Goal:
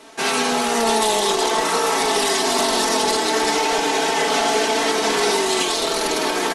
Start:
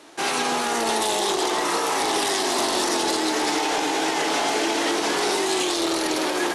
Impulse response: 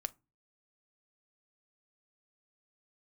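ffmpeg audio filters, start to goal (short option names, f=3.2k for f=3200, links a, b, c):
-af "lowshelf=f=93:g=7.5,aecho=1:1:4.5:0.81,volume=1.5dB"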